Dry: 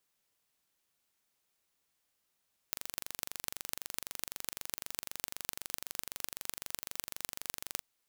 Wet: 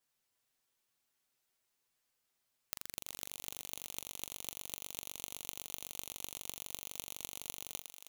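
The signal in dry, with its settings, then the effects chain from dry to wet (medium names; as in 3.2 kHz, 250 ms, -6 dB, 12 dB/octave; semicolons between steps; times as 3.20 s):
pulse train 23.9 per s, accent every 6, -6 dBFS 5.10 s
touch-sensitive flanger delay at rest 10 ms, full sweep at -52.5 dBFS; on a send: thinning echo 358 ms, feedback 32%, high-pass 610 Hz, level -6.5 dB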